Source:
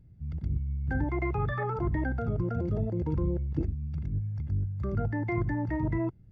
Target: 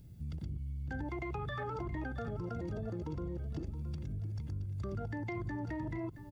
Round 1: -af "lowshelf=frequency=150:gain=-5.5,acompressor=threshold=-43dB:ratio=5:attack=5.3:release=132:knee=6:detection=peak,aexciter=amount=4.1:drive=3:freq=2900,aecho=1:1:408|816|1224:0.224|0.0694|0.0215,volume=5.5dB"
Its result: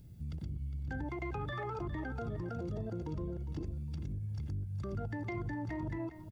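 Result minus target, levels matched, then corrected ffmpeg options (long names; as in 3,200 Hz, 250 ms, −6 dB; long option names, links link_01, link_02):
echo 264 ms early
-af "lowshelf=frequency=150:gain=-5.5,acompressor=threshold=-43dB:ratio=5:attack=5.3:release=132:knee=6:detection=peak,aexciter=amount=4.1:drive=3:freq=2900,aecho=1:1:672|1344|2016:0.224|0.0694|0.0215,volume=5.5dB"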